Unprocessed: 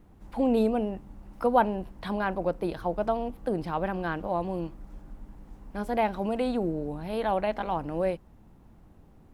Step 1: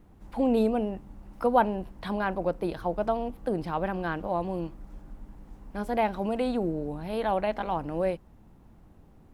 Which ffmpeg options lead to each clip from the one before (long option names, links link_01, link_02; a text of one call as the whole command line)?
ffmpeg -i in.wav -af anull out.wav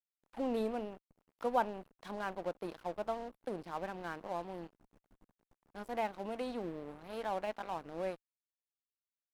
ffmpeg -i in.wav -af "aeval=exprs='sgn(val(0))*max(abs(val(0))-0.0106,0)':channel_layout=same,equalizer=frequency=62:width=0.5:gain=-12,volume=-8dB" out.wav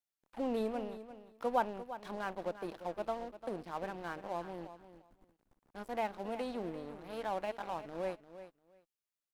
ffmpeg -i in.wav -af "aecho=1:1:347|694:0.224|0.0381" out.wav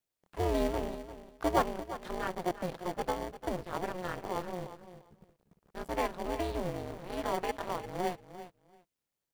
ffmpeg -i in.wav -filter_complex "[0:a]asplit=2[link_01][link_02];[link_02]acrusher=samples=34:mix=1:aa=0.000001,volume=-7dB[link_03];[link_01][link_03]amix=inputs=2:normalize=0,aeval=exprs='val(0)*sin(2*PI*180*n/s)':channel_layout=same,volume=6dB" out.wav